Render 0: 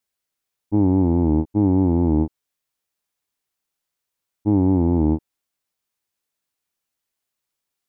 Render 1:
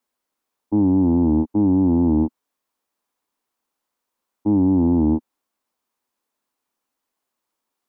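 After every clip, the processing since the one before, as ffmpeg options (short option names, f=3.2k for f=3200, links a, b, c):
-filter_complex "[0:a]equalizer=f=125:t=o:w=1:g=-7,equalizer=f=250:t=o:w=1:g=11,equalizer=f=500:t=o:w=1:g=4,equalizer=f=1k:t=o:w=1:g=10,acrossover=split=200[a][b];[b]alimiter=limit=-16dB:level=0:latency=1:release=50[c];[a][c]amix=inputs=2:normalize=0,volume=-1dB"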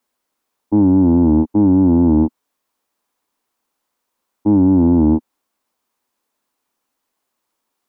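-af "acontrast=35"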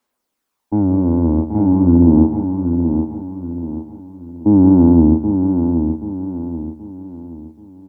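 -filter_complex "[0:a]asplit=2[a][b];[b]aecho=0:1:176:0.266[c];[a][c]amix=inputs=2:normalize=0,aphaser=in_gain=1:out_gain=1:delay=1.9:decay=0.36:speed=0.42:type=sinusoidal,asplit=2[d][e];[e]aecho=0:1:779|1558|2337|3116|3895:0.473|0.185|0.072|0.0281|0.0109[f];[d][f]amix=inputs=2:normalize=0,volume=-1.5dB"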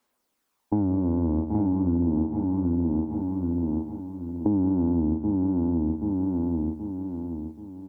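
-af "acompressor=threshold=-22dB:ratio=6"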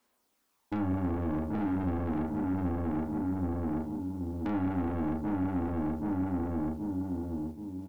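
-filter_complex "[0:a]acrusher=bits=8:mode=log:mix=0:aa=0.000001,asoftclip=type=tanh:threshold=-29.5dB,asplit=2[a][b];[b]adelay=33,volume=-5.5dB[c];[a][c]amix=inputs=2:normalize=0"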